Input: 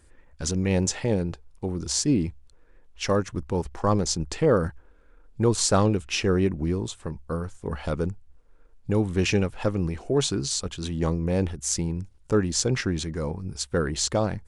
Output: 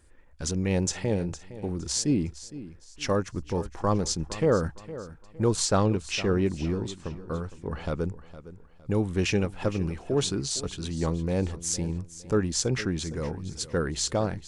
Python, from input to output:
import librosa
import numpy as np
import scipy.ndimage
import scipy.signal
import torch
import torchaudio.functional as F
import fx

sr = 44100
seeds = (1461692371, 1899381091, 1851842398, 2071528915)

y = fx.lowpass(x, sr, hz=7000.0, slope=12, at=(5.65, 8.04))
y = fx.echo_feedback(y, sr, ms=461, feedback_pct=34, wet_db=-15.5)
y = F.gain(torch.from_numpy(y), -2.5).numpy()